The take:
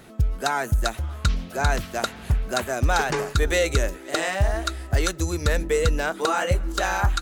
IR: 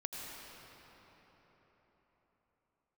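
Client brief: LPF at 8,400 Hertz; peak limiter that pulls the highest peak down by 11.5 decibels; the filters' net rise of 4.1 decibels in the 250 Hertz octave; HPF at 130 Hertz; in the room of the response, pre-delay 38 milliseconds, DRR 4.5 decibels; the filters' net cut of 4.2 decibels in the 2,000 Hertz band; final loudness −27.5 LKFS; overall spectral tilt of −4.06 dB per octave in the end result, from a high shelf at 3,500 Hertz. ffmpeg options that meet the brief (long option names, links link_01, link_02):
-filter_complex "[0:a]highpass=130,lowpass=8400,equalizer=frequency=250:width_type=o:gain=6.5,equalizer=frequency=2000:width_type=o:gain=-8,highshelf=frequency=3500:gain=7,alimiter=limit=-17.5dB:level=0:latency=1,asplit=2[link_01][link_02];[1:a]atrim=start_sample=2205,adelay=38[link_03];[link_02][link_03]afir=irnorm=-1:irlink=0,volume=-5dB[link_04];[link_01][link_04]amix=inputs=2:normalize=0"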